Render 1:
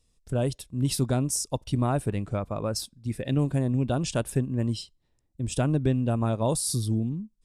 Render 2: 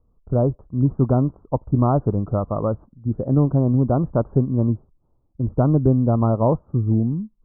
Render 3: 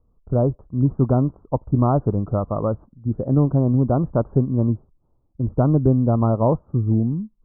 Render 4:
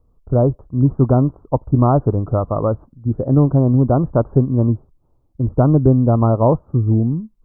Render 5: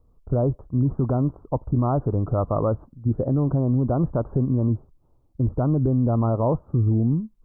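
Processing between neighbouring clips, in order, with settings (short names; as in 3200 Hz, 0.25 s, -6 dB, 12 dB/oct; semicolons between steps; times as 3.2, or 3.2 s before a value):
steep low-pass 1300 Hz 72 dB/oct; gain +7.5 dB
nothing audible
bell 200 Hz -6.5 dB 0.25 oct; gain +4.5 dB
limiter -12 dBFS, peak gain reduction 10 dB; gain -1 dB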